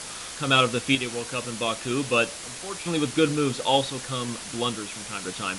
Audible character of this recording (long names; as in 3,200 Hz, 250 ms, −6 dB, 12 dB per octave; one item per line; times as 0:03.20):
sample-and-hold tremolo 2.1 Hz, depth 80%
a quantiser's noise floor 6 bits, dither triangular
MP3